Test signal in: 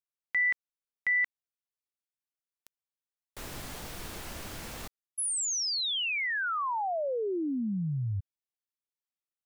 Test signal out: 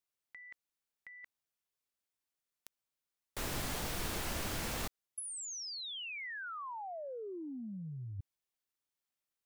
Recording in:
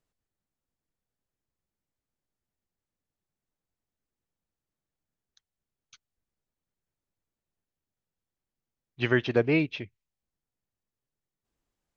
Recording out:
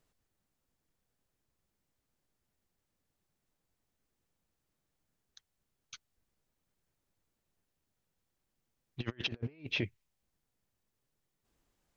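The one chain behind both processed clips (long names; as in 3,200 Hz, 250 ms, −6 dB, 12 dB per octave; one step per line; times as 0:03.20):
compressor whose output falls as the input rises −36 dBFS, ratio −0.5
level −3 dB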